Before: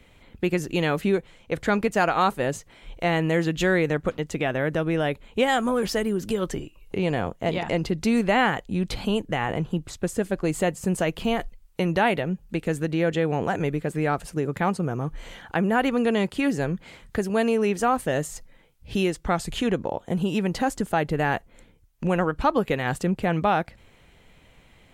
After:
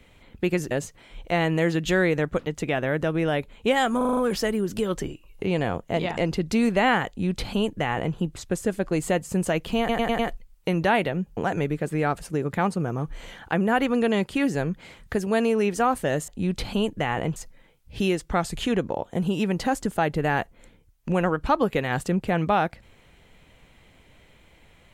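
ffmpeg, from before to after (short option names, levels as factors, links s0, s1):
-filter_complex "[0:a]asplit=14[s0][s1][s2][s3][s4][s5][s6][s7][s8][s9][s10][s11][s12][s13];[s0]atrim=end=0.712[s14];[s1]atrim=start=2.428:end=5.732[s15];[s2]atrim=start=5.688:end=5.732[s16];[s3]atrim=start=5.688:end=5.732[s17];[s4]atrim=start=5.688:end=5.732[s18];[s5]atrim=start=5.688:end=5.732[s19];[s6]atrim=start=5.688:end=11.412[s20];[s7]atrim=start=11.308:end=11.412[s21];[s8]atrim=start=11.308:end=11.412[s22];[s9]atrim=start=11.308:end=11.412[s23];[s10]atrim=start=11.308:end=12.492[s24];[s11]atrim=start=13.398:end=18.312[s25];[s12]atrim=start=8.598:end=9.682[s26];[s13]atrim=start=18.308[s27];[s14][s15]acrossfade=d=0.004:c1=hsin:c2=hsin[s28];[s28][s16]acrossfade=d=0.004:c1=hsin:c2=hsin[s29];[s29][s17]acrossfade=d=0.004:c1=hsin:c2=hsin[s30];[s30][s18]acrossfade=d=0.004:c1=hsin:c2=hsin[s31];[s31][s19]acrossfade=d=0.004:c1=hsin:c2=hsin[s32];[s32][s20]acrossfade=d=0.004:c1=hsin:c2=hsin[s33];[s33][s21]acrossfade=d=0.004:c1=hsin:c2=hsin[s34];[s34][s22]acrossfade=d=0.004:c1=hsin:c2=hsin[s35];[s35][s23]acrossfade=d=0.004:c1=hsin:c2=hsin[s36];[s36][s24]acrossfade=d=0.004:c1=hsin:c2=hsin[s37];[s37][s25]acrossfade=d=0.004:c1=hsin:c2=hsin[s38];[s38][s26]acrossfade=d=0.004:c1=hsin:c2=hsin[s39];[s39][s27]acrossfade=d=0.004:c1=hsin:c2=hsin"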